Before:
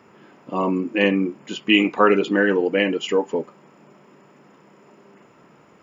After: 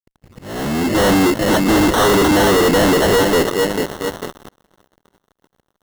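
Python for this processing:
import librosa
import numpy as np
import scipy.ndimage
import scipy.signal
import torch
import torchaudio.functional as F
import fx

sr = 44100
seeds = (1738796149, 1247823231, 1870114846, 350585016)

y = fx.tape_start_head(x, sr, length_s=0.88)
y = fx.echo_feedback(y, sr, ms=443, feedback_pct=43, wet_db=-19.0)
y = fx.sample_hold(y, sr, seeds[0], rate_hz=2400.0, jitter_pct=0)
y = fx.fuzz(y, sr, gain_db=37.0, gate_db=-47.0)
y = fx.auto_swell(y, sr, attack_ms=698.0)
y = y * 10.0 ** (1.5 / 20.0)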